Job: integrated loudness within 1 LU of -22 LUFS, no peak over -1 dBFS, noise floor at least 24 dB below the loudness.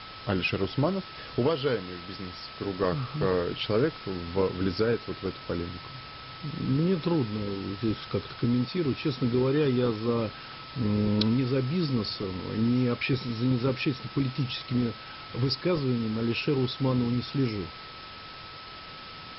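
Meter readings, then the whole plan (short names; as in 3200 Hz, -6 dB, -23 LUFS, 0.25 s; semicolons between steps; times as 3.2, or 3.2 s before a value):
steady tone 1300 Hz; tone level -46 dBFS; noise floor -43 dBFS; noise floor target -53 dBFS; loudness -28.5 LUFS; peak -10.5 dBFS; loudness target -22.0 LUFS
-> notch 1300 Hz, Q 30; noise print and reduce 10 dB; gain +6.5 dB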